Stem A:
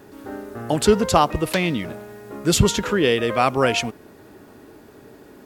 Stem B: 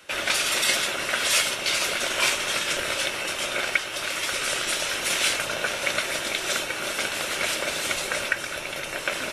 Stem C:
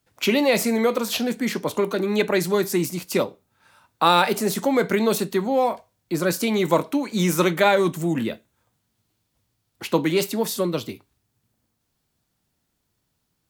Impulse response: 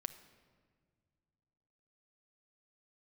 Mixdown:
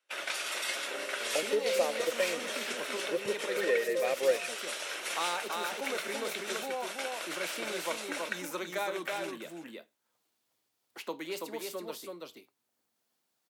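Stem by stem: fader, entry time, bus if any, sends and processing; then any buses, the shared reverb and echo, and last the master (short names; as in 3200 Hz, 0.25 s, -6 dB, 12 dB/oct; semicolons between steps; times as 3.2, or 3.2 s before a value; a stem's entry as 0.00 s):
+1.5 dB, 0.65 s, no send, no echo send, vocal tract filter e
-12.5 dB, 0.00 s, no send, echo send -17.5 dB, gate -29 dBFS, range -30 dB
-17.0 dB, 1.15 s, no send, echo send -4 dB, dry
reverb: off
echo: echo 0.329 s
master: HPF 390 Hz 12 dB/oct; three-band squash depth 40%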